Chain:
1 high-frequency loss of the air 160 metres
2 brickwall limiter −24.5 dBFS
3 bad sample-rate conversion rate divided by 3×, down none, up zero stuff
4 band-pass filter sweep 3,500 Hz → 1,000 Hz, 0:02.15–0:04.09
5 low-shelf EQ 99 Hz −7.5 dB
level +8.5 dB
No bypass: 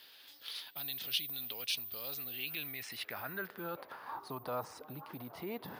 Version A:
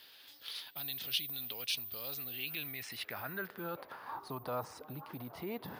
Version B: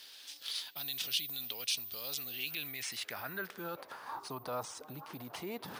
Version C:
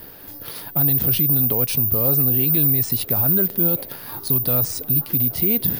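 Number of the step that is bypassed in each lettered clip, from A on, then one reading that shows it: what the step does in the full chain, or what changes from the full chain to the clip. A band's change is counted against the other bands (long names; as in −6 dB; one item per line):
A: 5, 125 Hz band +2.5 dB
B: 1, 8 kHz band +8.0 dB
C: 4, 125 Hz band +17.5 dB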